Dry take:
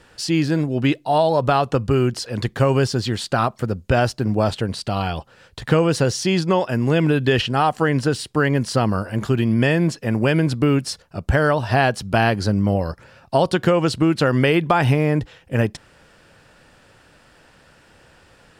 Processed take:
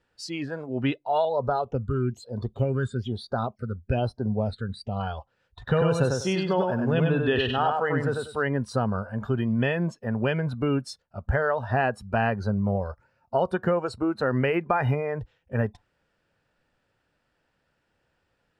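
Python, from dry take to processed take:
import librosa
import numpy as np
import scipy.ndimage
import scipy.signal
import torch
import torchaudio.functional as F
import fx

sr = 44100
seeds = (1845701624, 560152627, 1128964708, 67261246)

y = fx.phaser_stages(x, sr, stages=8, low_hz=730.0, high_hz=2700.0, hz=1.1, feedback_pct=20, at=(1.25, 5.0))
y = fx.echo_feedback(y, sr, ms=97, feedback_pct=25, wet_db=-3.0, at=(5.62, 8.42), fade=0.02)
y = fx.peak_eq(y, sr, hz=3400.0, db=-8.5, octaves=0.41, at=(11.71, 15.09))
y = fx.noise_reduce_blind(y, sr, reduce_db=15)
y = fx.high_shelf(y, sr, hz=7500.0, db=-11.5)
y = fx.notch(y, sr, hz=1100.0, q=27.0)
y = y * 10.0 ** (-6.0 / 20.0)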